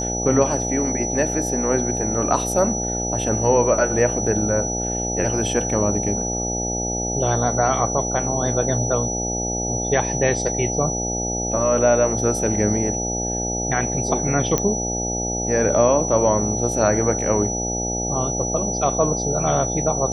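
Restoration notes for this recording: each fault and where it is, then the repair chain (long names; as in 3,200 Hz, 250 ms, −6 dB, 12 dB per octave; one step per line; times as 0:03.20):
mains buzz 60 Hz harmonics 14 −27 dBFS
whistle 5,900 Hz −25 dBFS
0:14.58: click −5 dBFS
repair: click removal
hum removal 60 Hz, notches 14
notch filter 5,900 Hz, Q 30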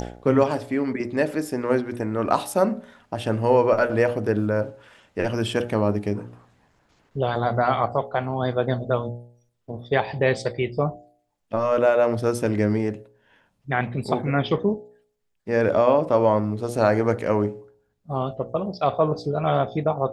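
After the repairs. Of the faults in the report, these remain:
none of them is left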